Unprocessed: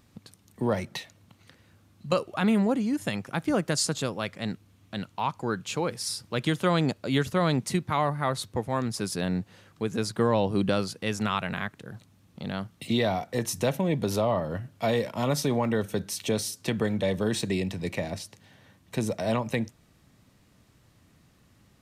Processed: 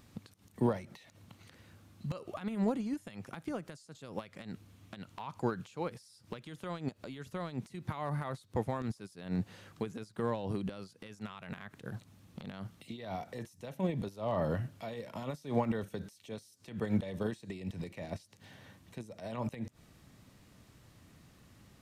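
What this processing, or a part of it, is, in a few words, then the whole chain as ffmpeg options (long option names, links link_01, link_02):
de-esser from a sidechain: -filter_complex "[0:a]asplit=2[link_01][link_02];[link_02]highpass=5400,apad=whole_len=961929[link_03];[link_01][link_03]sidechaincompress=threshold=-59dB:ratio=16:attack=1.3:release=75,volume=1dB"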